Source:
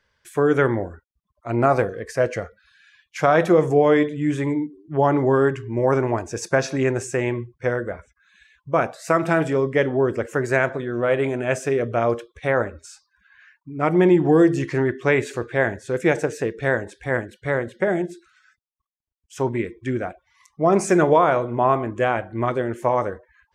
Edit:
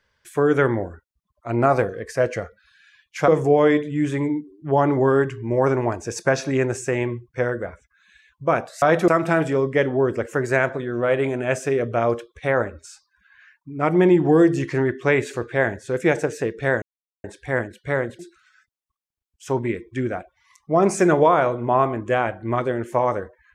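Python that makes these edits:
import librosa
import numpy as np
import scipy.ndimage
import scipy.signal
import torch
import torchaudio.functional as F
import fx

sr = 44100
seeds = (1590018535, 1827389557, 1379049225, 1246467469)

y = fx.edit(x, sr, fx.move(start_s=3.28, length_s=0.26, to_s=9.08),
    fx.insert_silence(at_s=16.82, length_s=0.42),
    fx.cut(start_s=17.77, length_s=0.32), tone=tone)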